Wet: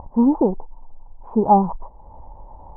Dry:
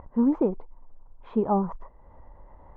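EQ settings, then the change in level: resonant low-pass 860 Hz, resonance Q 4.9; distance through air 190 m; bass shelf 340 Hz +8.5 dB; 0.0 dB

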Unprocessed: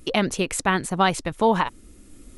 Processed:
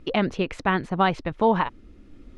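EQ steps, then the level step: distance through air 250 m; 0.0 dB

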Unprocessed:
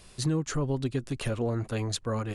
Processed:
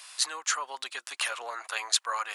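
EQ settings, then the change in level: high-pass 930 Hz 24 dB/octave; +9.0 dB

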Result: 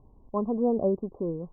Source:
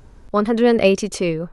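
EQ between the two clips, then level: rippled Chebyshev low-pass 1.1 kHz, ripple 3 dB; -8.5 dB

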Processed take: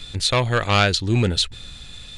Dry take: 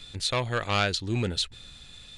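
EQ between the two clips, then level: bass shelf 110 Hz +4.5 dB; +7.5 dB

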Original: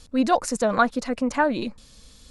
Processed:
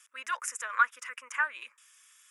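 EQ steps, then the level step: high-pass 1 kHz 24 dB/octave; static phaser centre 1.8 kHz, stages 4; 0.0 dB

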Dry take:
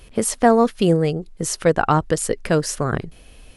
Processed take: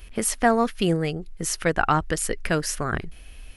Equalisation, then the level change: graphic EQ 125/250/500/1000/4000/8000 Hz -11/-6/-10/-6/-5/-7 dB; +4.5 dB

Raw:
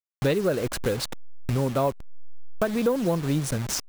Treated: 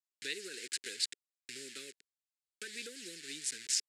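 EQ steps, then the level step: elliptic band-stop 420–1700 Hz, stop band 60 dB; cabinet simulation 290–7400 Hz, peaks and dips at 560 Hz -4 dB, 3.3 kHz -3 dB, 6 kHz -9 dB; differentiator; +5.5 dB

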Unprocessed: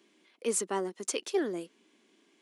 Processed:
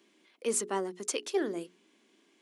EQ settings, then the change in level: hum notches 60/120/180/240/300/360/420 Hz; 0.0 dB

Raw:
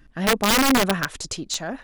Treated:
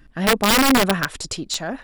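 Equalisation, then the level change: band-stop 6.3 kHz, Q 11; +2.5 dB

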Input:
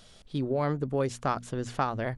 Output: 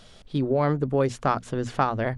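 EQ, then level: treble shelf 5.5 kHz -8 dB; hum notches 60/120/180/240 Hz; +5.5 dB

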